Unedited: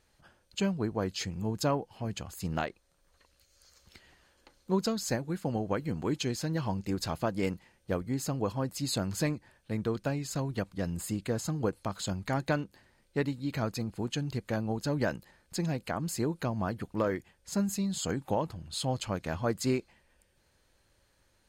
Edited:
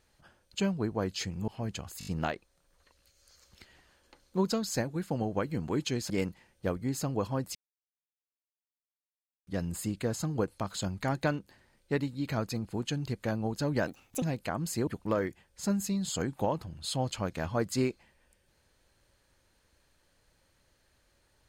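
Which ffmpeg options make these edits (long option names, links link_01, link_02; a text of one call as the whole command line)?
ffmpeg -i in.wav -filter_complex "[0:a]asplit=12[link_01][link_02][link_03][link_04][link_05][link_06][link_07][link_08][link_09][link_10][link_11][link_12];[link_01]atrim=end=1.482[link_13];[link_02]atrim=start=1.898:end=2.432[link_14];[link_03]atrim=start=2.408:end=2.432[link_15];[link_04]atrim=start=2.408:end=2.432[link_16];[link_05]atrim=start=2.408:end=2.432[link_17];[link_06]atrim=start=2.408:end=6.442[link_18];[link_07]atrim=start=7.348:end=8.8,asetpts=PTS-STARTPTS,afade=type=out:start_time=1.448:duration=0.004:curve=hsin[link_19];[link_08]atrim=start=8.8:end=10.72,asetpts=PTS-STARTPTS,volume=0[link_20];[link_09]atrim=start=10.72:end=15.124,asetpts=PTS-STARTPTS,afade=type=in:duration=0.004:curve=hsin[link_21];[link_10]atrim=start=15.12:end=15.64,asetpts=PTS-STARTPTS,asetrate=65268,aresample=44100[link_22];[link_11]atrim=start=15.636:end=16.292[link_23];[link_12]atrim=start=16.758[link_24];[link_13][link_14]acrossfade=duration=0.004:curve1=hsin:curve2=hsin[link_25];[link_25][link_15]acrossfade=duration=0.004:curve1=hsin:curve2=hsin[link_26];[link_26][link_16]acrossfade=duration=0.004:curve1=hsin:curve2=hsin[link_27];[link_27][link_17]acrossfade=duration=0.004:curve1=hsin:curve2=hsin[link_28];[link_28][link_18]acrossfade=duration=0.004:curve1=hsin:curve2=hsin[link_29];[link_19][link_20][link_21]concat=n=3:v=0:a=1[link_30];[link_29][link_30]acrossfade=duration=0.004:curve1=hsin:curve2=hsin[link_31];[link_31][link_22]acrossfade=duration=0.004:curve1=hsin:curve2=hsin[link_32];[link_32][link_23]acrossfade=duration=0.004:curve1=hsin:curve2=hsin[link_33];[link_33][link_24]acrossfade=duration=0.004:curve1=hsin:curve2=hsin" out.wav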